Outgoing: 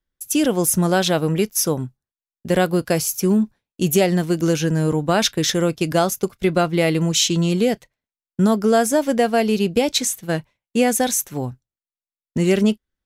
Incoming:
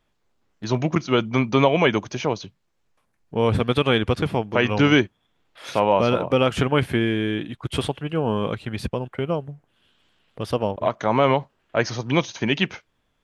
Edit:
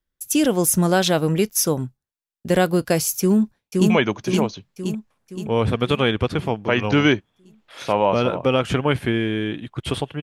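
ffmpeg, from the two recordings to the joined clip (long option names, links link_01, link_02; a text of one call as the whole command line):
ffmpeg -i cue0.wav -i cue1.wav -filter_complex "[0:a]apad=whole_dur=10.22,atrim=end=10.22,atrim=end=3.902[link_01];[1:a]atrim=start=1.768:end=8.09[link_02];[link_01][link_02]acrossfade=duration=0.004:curve1=hsin:curve2=hsin,asplit=2[link_03][link_04];[link_04]afade=type=in:start_time=3.2:duration=0.01,afade=type=out:start_time=3.9:duration=0.01,aecho=0:1:520|1040|1560|2080|2600|3120|3640|4160:0.794328|0.436881|0.240284|0.132156|0.072686|0.0399773|0.0219875|0.0120931[link_05];[link_03][link_05]amix=inputs=2:normalize=0" out.wav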